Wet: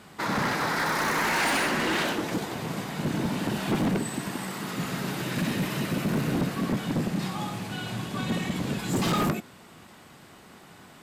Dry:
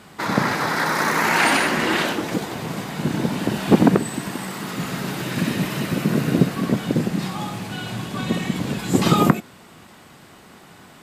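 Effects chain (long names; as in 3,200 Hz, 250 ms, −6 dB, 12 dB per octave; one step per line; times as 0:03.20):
gain into a clipping stage and back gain 18 dB
level −4 dB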